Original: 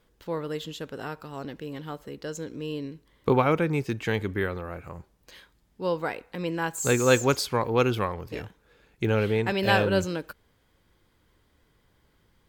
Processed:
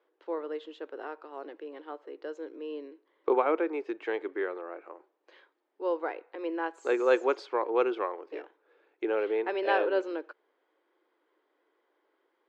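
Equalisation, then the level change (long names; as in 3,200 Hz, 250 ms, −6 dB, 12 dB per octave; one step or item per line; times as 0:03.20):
elliptic high-pass filter 330 Hz, stop band 50 dB
head-to-tape spacing loss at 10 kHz 30 dB
high-shelf EQ 5,900 Hz −8 dB
0.0 dB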